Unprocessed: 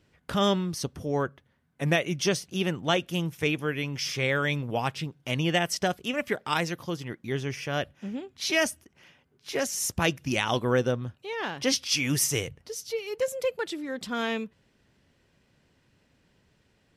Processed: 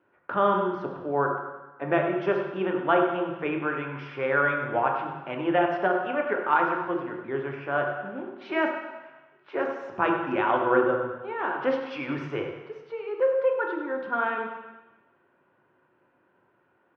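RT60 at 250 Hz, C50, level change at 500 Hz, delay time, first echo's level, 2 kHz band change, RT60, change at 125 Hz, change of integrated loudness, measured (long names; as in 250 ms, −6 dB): 1.0 s, 4.0 dB, +4.0 dB, 99 ms, −11.5 dB, +1.5 dB, 1.1 s, −8.0 dB, +1.5 dB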